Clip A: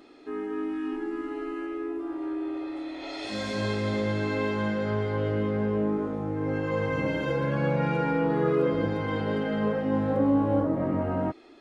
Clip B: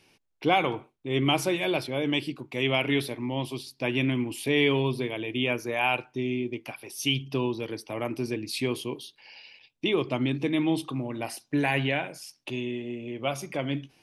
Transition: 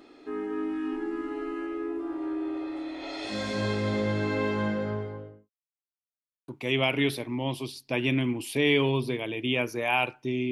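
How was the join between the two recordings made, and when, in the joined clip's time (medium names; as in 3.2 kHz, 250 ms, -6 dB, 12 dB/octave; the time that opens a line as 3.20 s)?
clip A
4.57–5.50 s: studio fade out
5.50–6.48 s: mute
6.48 s: go over to clip B from 2.39 s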